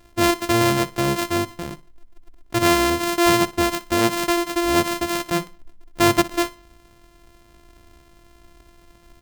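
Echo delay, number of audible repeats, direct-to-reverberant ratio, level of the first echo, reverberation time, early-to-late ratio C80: 60 ms, 2, no reverb audible, −18.0 dB, no reverb audible, no reverb audible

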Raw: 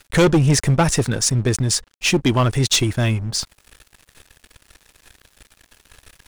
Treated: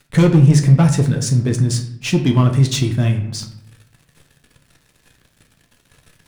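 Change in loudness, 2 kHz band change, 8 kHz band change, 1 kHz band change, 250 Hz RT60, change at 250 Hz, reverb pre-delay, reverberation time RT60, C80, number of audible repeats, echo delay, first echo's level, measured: +3.0 dB, −5.0 dB, −5.5 dB, −3.5 dB, 0.90 s, +4.0 dB, 7 ms, 0.65 s, 12.5 dB, no echo audible, no echo audible, no echo audible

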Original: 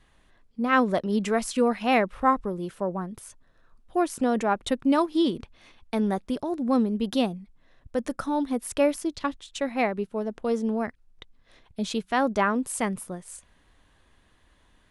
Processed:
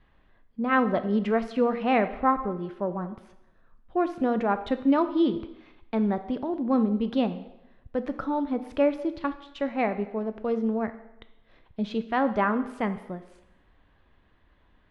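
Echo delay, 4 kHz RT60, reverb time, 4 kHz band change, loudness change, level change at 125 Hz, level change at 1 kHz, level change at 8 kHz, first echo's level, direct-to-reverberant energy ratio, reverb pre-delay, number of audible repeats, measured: no echo audible, 0.85 s, 0.90 s, −7.0 dB, −0.5 dB, 0.0 dB, −1.0 dB, below −25 dB, no echo audible, 10.0 dB, 5 ms, no echo audible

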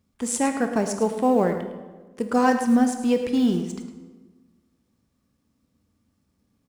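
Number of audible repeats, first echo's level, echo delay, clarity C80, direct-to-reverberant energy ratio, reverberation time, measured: 1, −11.5 dB, 107 ms, 8.0 dB, 5.5 dB, 1.3 s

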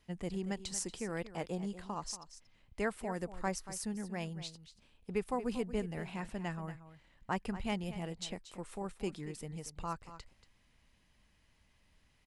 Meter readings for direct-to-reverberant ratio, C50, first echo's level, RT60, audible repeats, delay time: no reverb audible, no reverb audible, −13.5 dB, no reverb audible, 1, 233 ms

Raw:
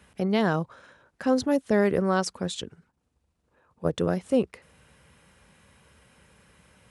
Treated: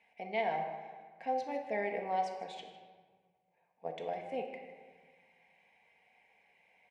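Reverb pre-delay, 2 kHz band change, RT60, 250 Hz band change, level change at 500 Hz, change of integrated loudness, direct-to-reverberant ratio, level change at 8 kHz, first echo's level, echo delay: 4 ms, −8.5 dB, 1.6 s, −21.5 dB, −11.5 dB, −11.5 dB, 1.5 dB, below −20 dB, −15.5 dB, 156 ms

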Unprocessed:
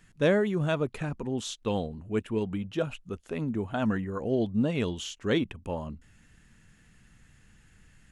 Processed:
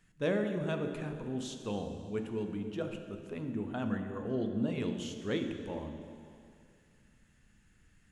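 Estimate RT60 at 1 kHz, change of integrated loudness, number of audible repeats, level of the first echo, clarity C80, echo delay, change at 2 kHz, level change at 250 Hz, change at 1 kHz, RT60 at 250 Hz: 2.3 s, −6.0 dB, no echo audible, no echo audible, 7.5 dB, no echo audible, −7.5 dB, −5.5 dB, −7.5 dB, 2.1 s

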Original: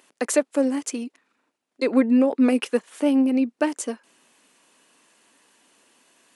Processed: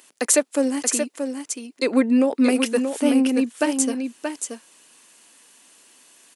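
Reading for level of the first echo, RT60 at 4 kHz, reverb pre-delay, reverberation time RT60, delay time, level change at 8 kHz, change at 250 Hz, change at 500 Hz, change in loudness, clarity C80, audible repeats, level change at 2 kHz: −6.5 dB, no reverb audible, no reverb audible, no reverb audible, 629 ms, +10.0 dB, +1.0 dB, +1.0 dB, +1.0 dB, no reverb audible, 1, +4.0 dB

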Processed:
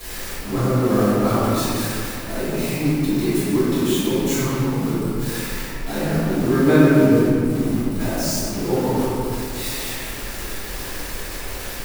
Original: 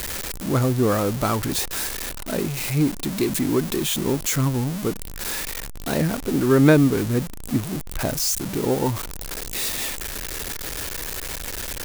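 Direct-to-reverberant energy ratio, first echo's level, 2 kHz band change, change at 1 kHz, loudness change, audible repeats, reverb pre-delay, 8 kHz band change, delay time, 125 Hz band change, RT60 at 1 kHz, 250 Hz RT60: −17.0 dB, no echo audible, +2.0 dB, +3.0 dB, +2.5 dB, no echo audible, 4 ms, −2.5 dB, no echo audible, +1.5 dB, 2.3 s, 2.9 s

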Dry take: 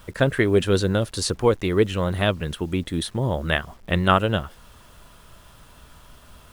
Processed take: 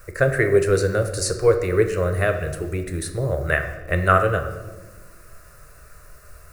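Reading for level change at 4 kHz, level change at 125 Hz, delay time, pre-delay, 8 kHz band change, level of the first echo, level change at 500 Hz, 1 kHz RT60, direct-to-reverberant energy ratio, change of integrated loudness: −7.5 dB, +0.5 dB, no echo audible, 4 ms, +3.5 dB, no echo audible, +3.0 dB, 1.0 s, 6.0 dB, +1.5 dB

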